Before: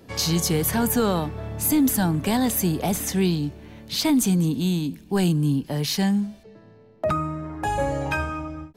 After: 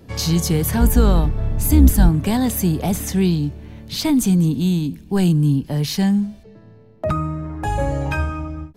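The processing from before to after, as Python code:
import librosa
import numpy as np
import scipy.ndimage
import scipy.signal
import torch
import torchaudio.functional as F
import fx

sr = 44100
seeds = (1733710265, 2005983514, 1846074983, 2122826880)

y = fx.octave_divider(x, sr, octaves=2, level_db=1.0, at=(0.8, 2.09))
y = fx.low_shelf(y, sr, hz=160.0, db=11.5)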